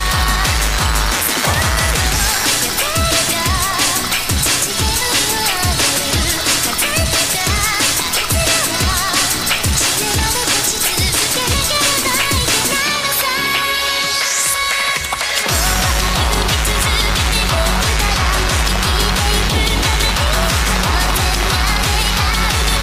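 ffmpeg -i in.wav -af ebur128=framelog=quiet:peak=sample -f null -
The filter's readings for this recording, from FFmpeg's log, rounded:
Integrated loudness:
  I:         -14.1 LUFS
  Threshold: -24.1 LUFS
Loudness range:
  LRA:         1.0 LU
  Threshold: -34.0 LUFS
  LRA low:   -14.5 LUFS
  LRA high:  -13.5 LUFS
Sample peak:
  Peak:       -2.6 dBFS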